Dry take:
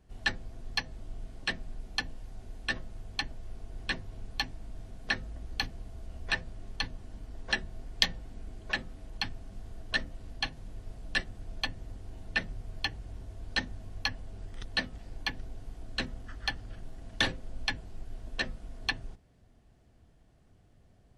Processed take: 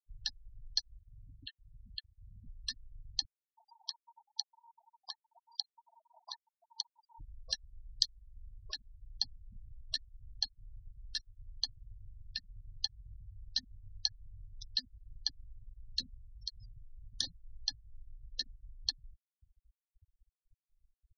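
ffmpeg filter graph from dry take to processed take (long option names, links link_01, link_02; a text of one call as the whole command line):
ffmpeg -i in.wav -filter_complex "[0:a]asettb=1/sr,asplit=3[link_01][link_02][link_03];[link_01]atrim=end=1.004[link_04];[link_02]atrim=start=1:end=2.47,asetpts=PTS-STARTPTS,afade=type=in:duration=0.004:curve=qsin,afade=type=out:start_time=1.466:duration=0.004:curve=qsin,highshelf=frequency=4200:width_type=q:width=3:gain=-13.5,acompressor=threshold=-41dB:ratio=2:attack=3.2:release=140:knee=1:detection=peak,highpass=53[link_05];[link_03]atrim=start=2.466[link_06];[link_04][link_05]acrossfade=duration=0.004:curve1=hsin:curve2=qsin[link_07];[link_07][link_06]acrossfade=duration=0.004:curve1=qsin:curve2=hsin,asettb=1/sr,asplit=3[link_08][link_09][link_10];[link_08]atrim=end=3.254[link_11];[link_09]atrim=start=3.25:end=7.19,asetpts=PTS-STARTPTS,afade=type=in:duration=0.004:curve=qsin,afade=type=out:start_time=3.936:duration=0.004:curve=qsin,highpass=frequency=920:width_type=q:width=8.2,acompressor=threshold=-38dB:ratio=8:attack=3.2:release=140:knee=1:detection=peak[link_12];[link_10]atrim=start=7.186[link_13];[link_11][link_12]acrossfade=duration=0.004:curve1=hsin:curve2=qsin[link_14];[link_14][link_13]acrossfade=duration=0.004:curve1=qsin:curve2=hsin,asettb=1/sr,asplit=3[link_15][link_16][link_17];[link_15]atrim=end=16.254[link_18];[link_16]atrim=start=16.25:end=16.93,asetpts=PTS-STARTPTS,afade=type=in:duration=0.004:curve=qsin,afade=type=out:start_time=0.676:duration=0.004:curve=qsin,highshelf=frequency=5500:gain=11,acompressor=threshold=-42dB:ratio=8:attack=3.2:release=140:knee=1:detection=peak[link_19];[link_17]atrim=start=16.926[link_20];[link_18][link_19]acrossfade=duration=0.004:curve1=hsin:curve2=qsin[link_21];[link_21][link_20]acrossfade=duration=0.004:curve1=qsin:curve2=hsin,acompressor=threshold=-48dB:ratio=3,highshelf=frequency=3400:width_type=q:width=3:gain=12,afftfilt=real='re*gte(hypot(re,im),0.0126)':imag='im*gte(hypot(re,im),0.0126)':win_size=1024:overlap=0.75" out.wav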